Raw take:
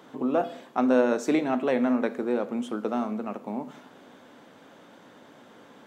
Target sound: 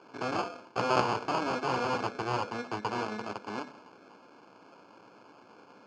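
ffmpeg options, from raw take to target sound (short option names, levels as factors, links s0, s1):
-af "acrusher=samples=23:mix=1:aa=0.000001,aeval=exprs='0.316*(cos(1*acos(clip(val(0)/0.316,-1,1)))-cos(1*PI/2))+0.126*(cos(3*acos(clip(val(0)/0.316,-1,1)))-cos(3*PI/2))+0.0316*(cos(7*acos(clip(val(0)/0.316,-1,1)))-cos(7*PI/2))+0.0501*(cos(8*acos(clip(val(0)/0.316,-1,1)))-cos(8*PI/2))':c=same,highpass=f=120:w=0.5412,highpass=f=120:w=1.3066,equalizer=f=150:t=q:w=4:g=-9,equalizer=f=240:t=q:w=4:g=-7,equalizer=f=580:t=q:w=4:g=-3,equalizer=f=960:t=q:w=4:g=4,equalizer=f=1500:t=q:w=4:g=3,equalizer=f=3300:t=q:w=4:g=-8,lowpass=f=5500:w=0.5412,lowpass=f=5500:w=1.3066,volume=0.841"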